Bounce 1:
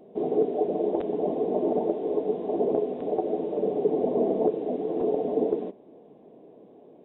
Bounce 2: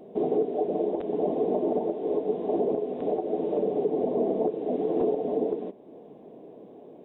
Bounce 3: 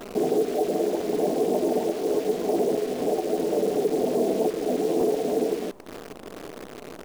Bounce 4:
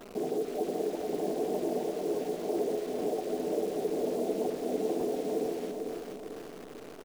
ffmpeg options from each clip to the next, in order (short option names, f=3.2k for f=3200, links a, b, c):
-af "alimiter=limit=-20.5dB:level=0:latency=1:release=444,volume=4dB"
-filter_complex "[0:a]asplit=2[a][b];[b]acompressor=threshold=-34dB:ratio=12,volume=1.5dB[c];[a][c]amix=inputs=2:normalize=0,acrusher=bits=7:dc=4:mix=0:aa=0.000001"
-af "aecho=1:1:446|892|1338|1784|2230|2676:0.562|0.264|0.124|0.0584|0.0274|0.0129,volume=-9dB"